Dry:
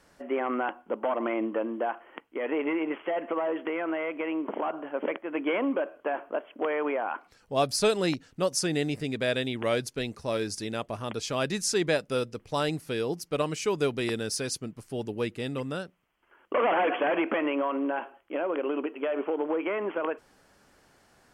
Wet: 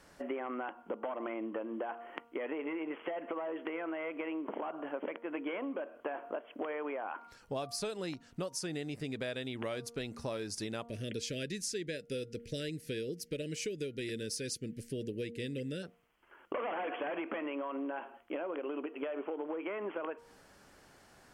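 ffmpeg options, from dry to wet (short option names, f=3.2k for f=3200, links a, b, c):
-filter_complex "[0:a]asplit=3[a][b][c];[a]afade=t=out:st=10.83:d=0.02[d];[b]asuperstop=centerf=950:order=8:qfactor=0.86,afade=t=in:st=10.83:d=0.02,afade=t=out:st=15.82:d=0.02[e];[c]afade=t=in:st=15.82:d=0.02[f];[d][e][f]amix=inputs=3:normalize=0,bandreject=f=234.6:t=h:w=4,bandreject=f=469.2:t=h:w=4,bandreject=f=703.8:t=h:w=4,bandreject=f=938.4:t=h:w=4,bandreject=f=1.173k:t=h:w=4,bandreject=f=1.4076k:t=h:w=4,acompressor=threshold=-36dB:ratio=10,volume=1dB"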